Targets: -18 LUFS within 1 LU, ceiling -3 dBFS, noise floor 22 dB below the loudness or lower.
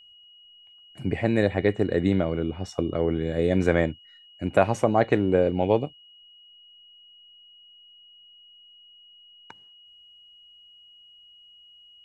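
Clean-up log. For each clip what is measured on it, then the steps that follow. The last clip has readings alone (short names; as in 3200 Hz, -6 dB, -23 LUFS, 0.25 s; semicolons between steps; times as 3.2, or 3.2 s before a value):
steady tone 2900 Hz; tone level -50 dBFS; loudness -24.5 LUFS; peak -4.5 dBFS; loudness target -18.0 LUFS
-> notch 2900 Hz, Q 30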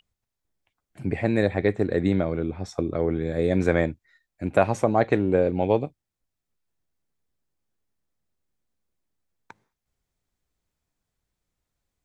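steady tone none; loudness -24.5 LUFS; peak -4.5 dBFS; loudness target -18.0 LUFS
-> gain +6.5 dB; limiter -3 dBFS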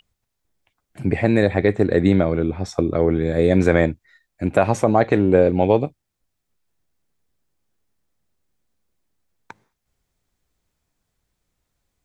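loudness -18.5 LUFS; peak -3.0 dBFS; noise floor -78 dBFS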